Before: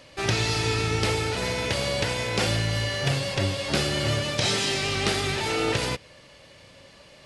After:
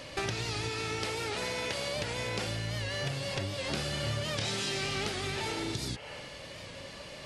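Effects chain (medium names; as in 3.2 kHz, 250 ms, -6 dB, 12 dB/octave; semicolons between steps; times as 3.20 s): 0.69–1.96 s: bass shelf 180 Hz -10.5 dB; 5.53–6.27 s: spectral replace 410–3300 Hz both; compression 10:1, threshold -37 dBFS, peak gain reduction 17.5 dB; 3.74–5.05 s: doubling 26 ms -6 dB; warped record 78 rpm, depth 100 cents; trim +5.5 dB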